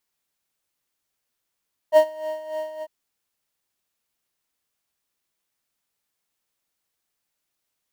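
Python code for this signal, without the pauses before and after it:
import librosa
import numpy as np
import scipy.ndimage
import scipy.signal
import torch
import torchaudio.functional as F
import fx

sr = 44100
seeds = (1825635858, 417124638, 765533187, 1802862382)

y = fx.sub_patch_tremolo(sr, seeds[0], note=75, wave='triangle', wave2='triangle', interval_st=7, detune_cents=16, level2_db=-11, sub_db=-28, noise_db=-27.0, kind='highpass', cutoff_hz=150.0, q=1.2, env_oct=2.0, env_decay_s=0.1, env_sustain_pct=5, attack_ms=47.0, decay_s=0.08, sustain_db=-16.0, release_s=0.05, note_s=0.9, lfo_hz=3.4, tremolo_db=10.0)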